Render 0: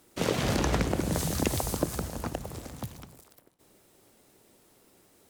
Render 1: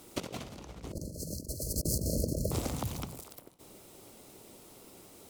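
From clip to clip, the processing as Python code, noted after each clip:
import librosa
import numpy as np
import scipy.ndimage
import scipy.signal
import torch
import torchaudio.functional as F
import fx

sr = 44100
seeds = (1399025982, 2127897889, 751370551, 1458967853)

y = fx.spec_erase(x, sr, start_s=0.92, length_s=1.59, low_hz=650.0, high_hz=4100.0)
y = fx.peak_eq(y, sr, hz=1700.0, db=-7.5, octaves=0.39)
y = fx.over_compress(y, sr, threshold_db=-36.0, ratio=-0.5)
y = F.gain(torch.from_numpy(y), 1.5).numpy()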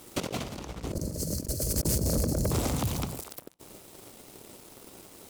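y = fx.leveller(x, sr, passes=3)
y = F.gain(torch.from_numpy(y), -3.5).numpy()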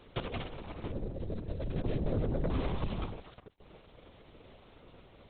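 y = fx.lpc_vocoder(x, sr, seeds[0], excitation='whisper', order=10)
y = F.gain(torch.from_numpy(y), -3.5).numpy()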